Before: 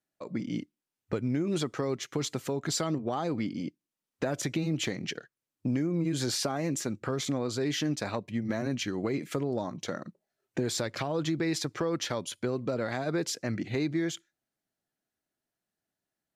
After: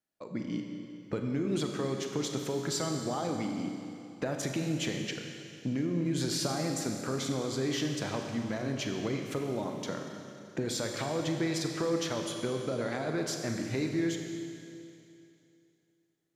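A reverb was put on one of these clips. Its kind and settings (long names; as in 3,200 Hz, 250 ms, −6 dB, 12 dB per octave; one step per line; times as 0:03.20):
four-comb reverb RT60 2.7 s, combs from 30 ms, DRR 3 dB
level −3 dB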